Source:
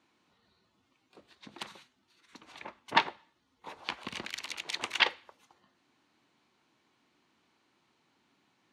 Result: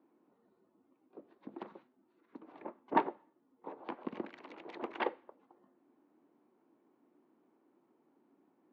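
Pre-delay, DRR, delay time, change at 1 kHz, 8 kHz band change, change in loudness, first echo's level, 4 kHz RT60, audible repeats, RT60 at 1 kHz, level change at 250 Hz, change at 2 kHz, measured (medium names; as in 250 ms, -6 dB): no reverb, no reverb, no echo, -3.0 dB, under -30 dB, -7.5 dB, no echo, no reverb, no echo, no reverb, +5.5 dB, -13.5 dB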